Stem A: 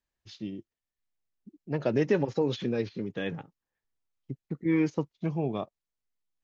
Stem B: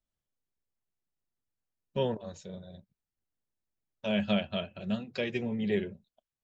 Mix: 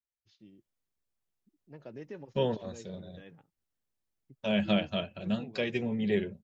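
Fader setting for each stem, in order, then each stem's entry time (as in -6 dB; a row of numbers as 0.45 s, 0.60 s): -19.0 dB, +1.0 dB; 0.00 s, 0.40 s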